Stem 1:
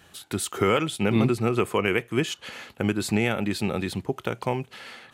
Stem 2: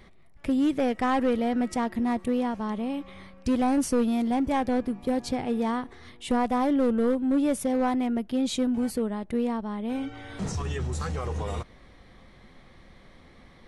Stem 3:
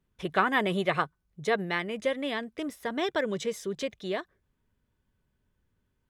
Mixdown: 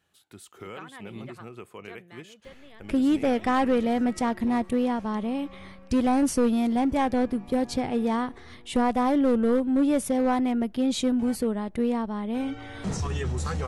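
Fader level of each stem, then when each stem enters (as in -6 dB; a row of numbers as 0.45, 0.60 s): -19.0, +1.5, -20.0 dB; 0.00, 2.45, 0.40 s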